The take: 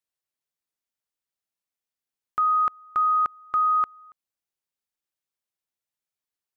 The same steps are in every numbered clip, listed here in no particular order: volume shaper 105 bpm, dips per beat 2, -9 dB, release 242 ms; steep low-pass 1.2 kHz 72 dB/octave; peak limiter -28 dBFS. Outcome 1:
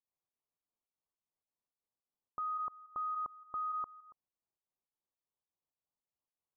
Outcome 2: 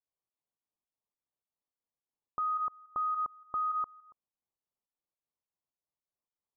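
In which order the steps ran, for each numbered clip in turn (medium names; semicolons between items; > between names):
volume shaper > peak limiter > steep low-pass; steep low-pass > volume shaper > peak limiter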